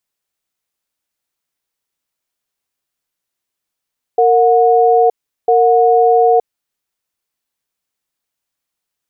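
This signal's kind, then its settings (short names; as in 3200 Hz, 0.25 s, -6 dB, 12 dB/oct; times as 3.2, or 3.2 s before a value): cadence 461 Hz, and 728 Hz, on 0.92 s, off 0.38 s, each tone -10 dBFS 2.54 s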